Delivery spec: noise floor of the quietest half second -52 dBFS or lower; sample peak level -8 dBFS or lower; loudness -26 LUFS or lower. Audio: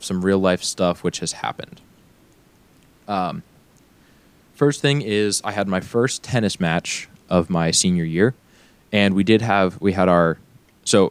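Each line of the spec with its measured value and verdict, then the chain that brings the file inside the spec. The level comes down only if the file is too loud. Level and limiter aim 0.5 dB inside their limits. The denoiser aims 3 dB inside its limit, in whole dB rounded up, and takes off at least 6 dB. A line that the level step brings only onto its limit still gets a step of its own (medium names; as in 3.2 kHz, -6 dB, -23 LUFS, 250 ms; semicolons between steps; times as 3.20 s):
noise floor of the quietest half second -54 dBFS: pass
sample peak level -2.5 dBFS: fail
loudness -20.0 LUFS: fail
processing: trim -6.5 dB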